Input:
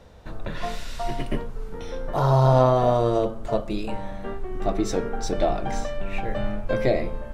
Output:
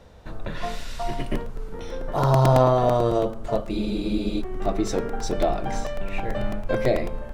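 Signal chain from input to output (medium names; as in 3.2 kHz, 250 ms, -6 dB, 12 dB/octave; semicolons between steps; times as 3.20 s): crackling interface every 0.11 s, samples 128, repeat, from 0.80 s; spectral freeze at 3.73 s, 0.68 s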